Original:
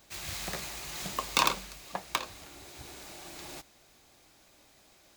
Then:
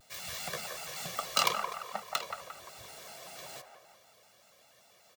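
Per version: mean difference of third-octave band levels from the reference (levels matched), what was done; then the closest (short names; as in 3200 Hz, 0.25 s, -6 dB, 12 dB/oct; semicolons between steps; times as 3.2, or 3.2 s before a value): 3.5 dB: HPF 160 Hz 12 dB/oct; comb 1.6 ms, depth 90%; band-limited delay 0.173 s, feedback 47%, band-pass 920 Hz, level -4.5 dB; shaped vibrato square 5.2 Hz, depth 160 cents; gain -4 dB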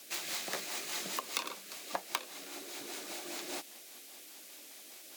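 8.0 dB: HPF 240 Hz 24 dB/oct; compressor 5:1, threshold -39 dBFS, peak gain reduction 17.5 dB; rotary speaker horn 5 Hz; band noise 2000–17000 Hz -60 dBFS; gain +6.5 dB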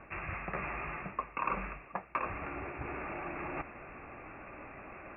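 18.0 dB: Chebyshev low-pass 2700 Hz, order 10; reverse; compressor 5:1, threshold -54 dBFS, peak gain reduction 27.5 dB; reverse; bell 1200 Hz +6 dB 0.35 oct; gain +16 dB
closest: first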